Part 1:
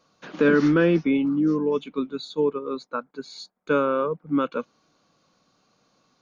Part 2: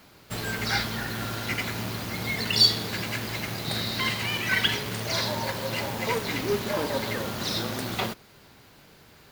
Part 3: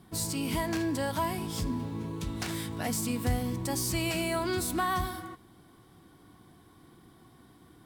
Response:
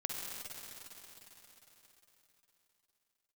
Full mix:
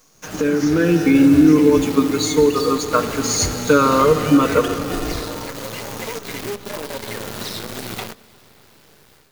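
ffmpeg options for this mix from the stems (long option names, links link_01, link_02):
-filter_complex "[0:a]aecho=1:1:6.5:0.7,alimiter=limit=-13dB:level=0:latency=1:release=162,aexciter=amount=11.9:drive=5.2:freq=5800,volume=1dB,asplit=2[link_01][link_02];[link_02]volume=-7dB[link_03];[1:a]highpass=frequency=45:width=0.5412,highpass=frequency=45:width=1.3066,equalizer=frequency=430:width=3.9:gain=5.5,acompressor=threshold=-30dB:ratio=16,volume=-5.5dB,asplit=2[link_04][link_05];[link_05]volume=-22dB[link_06];[2:a]acrusher=samples=41:mix=1:aa=0.000001,adelay=150,volume=-4dB[link_07];[link_01][link_04]amix=inputs=2:normalize=0,acrusher=bits=7:dc=4:mix=0:aa=0.000001,acompressor=threshold=-19dB:ratio=6,volume=0dB[link_08];[3:a]atrim=start_sample=2205[link_09];[link_03][link_06]amix=inputs=2:normalize=0[link_10];[link_10][link_09]afir=irnorm=-1:irlink=0[link_11];[link_07][link_08][link_11]amix=inputs=3:normalize=0,dynaudnorm=framelen=610:gausssize=3:maxgain=9.5dB"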